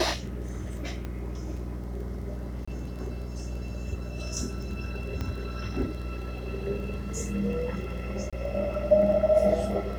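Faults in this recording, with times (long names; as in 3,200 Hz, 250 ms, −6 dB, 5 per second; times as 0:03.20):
surface crackle 17 per second −37 dBFS
mains hum 60 Hz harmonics 7 −35 dBFS
0:01.05: click −23 dBFS
0:02.65–0:02.67: drop-out 25 ms
0:05.21: click −19 dBFS
0:08.30–0:08.33: drop-out 26 ms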